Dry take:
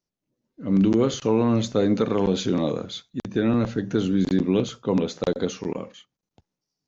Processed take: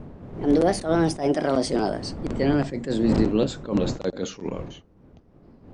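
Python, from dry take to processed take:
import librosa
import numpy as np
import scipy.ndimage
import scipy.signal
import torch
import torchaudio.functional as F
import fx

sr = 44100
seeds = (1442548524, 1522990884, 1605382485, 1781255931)

y = fx.speed_glide(x, sr, from_pct=155, to_pct=85)
y = fx.dmg_wind(y, sr, seeds[0], corner_hz=280.0, level_db=-33.0)
y = fx.attack_slew(y, sr, db_per_s=180.0)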